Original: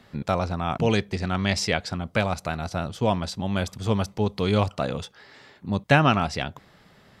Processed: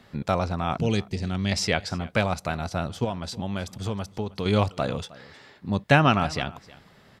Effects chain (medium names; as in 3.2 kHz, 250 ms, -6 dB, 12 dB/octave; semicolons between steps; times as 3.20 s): 0.78–1.52 s: peaking EQ 1.1 kHz -10.5 dB 2.2 oct; 3.04–4.46 s: compression 6:1, threshold -26 dBFS, peak gain reduction 9 dB; delay 313 ms -20.5 dB